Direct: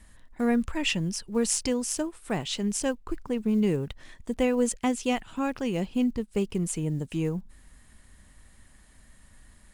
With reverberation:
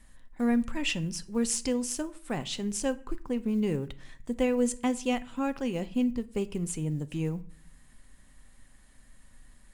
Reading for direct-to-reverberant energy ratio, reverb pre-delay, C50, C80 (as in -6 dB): 11.0 dB, 4 ms, 19.0 dB, 23.0 dB